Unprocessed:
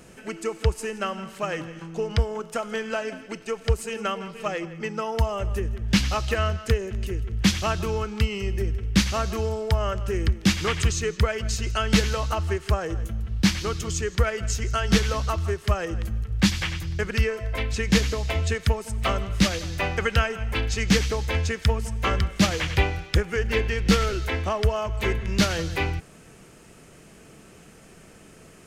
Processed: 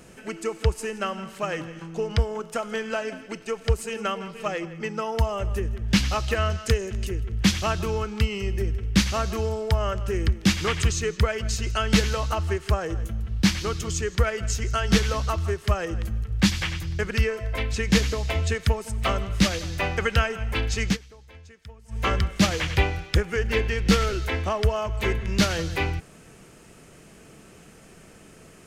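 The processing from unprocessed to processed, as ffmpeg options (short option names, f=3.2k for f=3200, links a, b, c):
-filter_complex "[0:a]asettb=1/sr,asplit=3[a][b][c];[a]atrim=end=6.504[d];[b]atrim=start=6.5:end=7.09,asetpts=PTS-STARTPTS,afade=t=in:d=0.004:c=qsin,afade=t=out:st=0.586:d=0.004:c=qsin,equalizer=f=6.8k:w=0.62:g=6.5[e];[c]atrim=start=7.086[f];[d][e]acrossfade=d=0.004:c1=hsin:c2=qsin[g];[g][f]acrossfade=d=0.004:c1=qsin:c2=hsin,asplit=3[h][i][j];[h]atrim=end=20.97,asetpts=PTS-STARTPTS,afade=t=out:st=20.84:d=0.13:c=qsin:silence=0.0749894[k];[i]atrim=start=20.97:end=21.88,asetpts=PTS-STARTPTS,volume=-22.5dB[l];[j]atrim=start=21.88,asetpts=PTS-STARTPTS,afade=t=in:d=0.13:c=qsin:silence=0.0749894[m];[k][l][m]concat=n=3:v=0:a=1"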